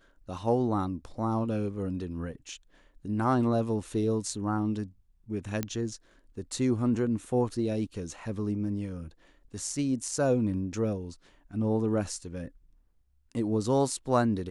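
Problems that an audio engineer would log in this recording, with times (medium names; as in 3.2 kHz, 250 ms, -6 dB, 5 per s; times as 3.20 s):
5.63 s: pop -15 dBFS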